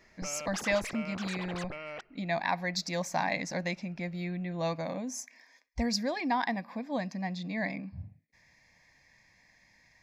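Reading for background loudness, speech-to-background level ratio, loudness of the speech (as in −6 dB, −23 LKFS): −41.0 LKFS, 7.5 dB, −33.5 LKFS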